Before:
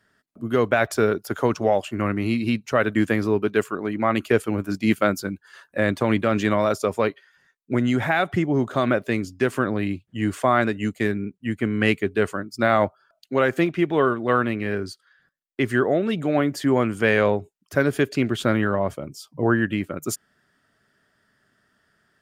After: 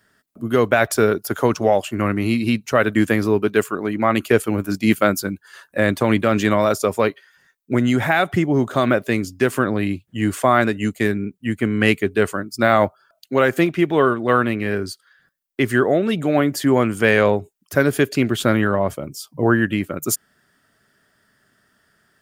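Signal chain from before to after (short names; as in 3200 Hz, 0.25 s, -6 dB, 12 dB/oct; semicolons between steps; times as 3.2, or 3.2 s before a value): high shelf 9200 Hz +11 dB; gain +3.5 dB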